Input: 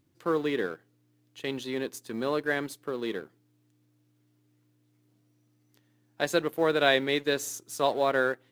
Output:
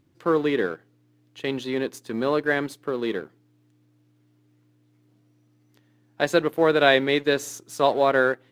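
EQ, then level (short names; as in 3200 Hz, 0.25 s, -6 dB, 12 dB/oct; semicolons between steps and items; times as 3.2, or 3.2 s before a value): high shelf 5300 Hz -9 dB; +6.0 dB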